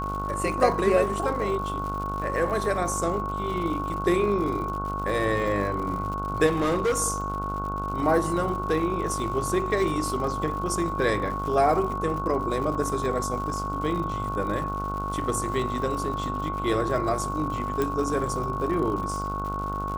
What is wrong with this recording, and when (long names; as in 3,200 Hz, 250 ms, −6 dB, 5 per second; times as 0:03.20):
mains buzz 50 Hz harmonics 30 −33 dBFS
surface crackle 140 per second −34 dBFS
whistle 1,100 Hz −30 dBFS
0:06.46–0:06.99: clipping −20 dBFS
0:12.75: drop-out 3.6 ms
0:17.82: click −13 dBFS